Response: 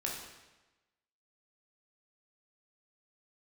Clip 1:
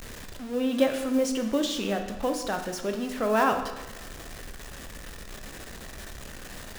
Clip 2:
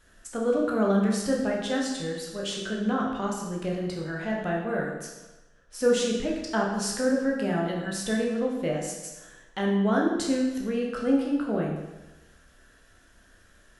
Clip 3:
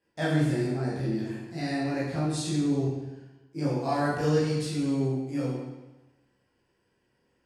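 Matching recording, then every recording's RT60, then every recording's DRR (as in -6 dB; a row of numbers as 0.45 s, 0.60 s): 2; 1.1 s, 1.1 s, 1.1 s; 5.0 dB, -2.5 dB, -9.0 dB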